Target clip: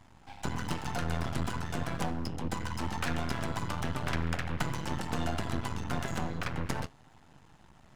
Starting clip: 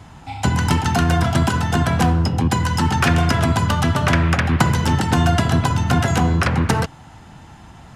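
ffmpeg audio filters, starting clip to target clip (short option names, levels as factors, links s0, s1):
-af "flanger=delay=2.9:depth=5.6:regen=-65:speed=0.36:shape=triangular,aeval=exprs='max(val(0),0)':c=same,bandreject=f=50:t=h:w=6,bandreject=f=100:t=h:w=6,volume=0.398"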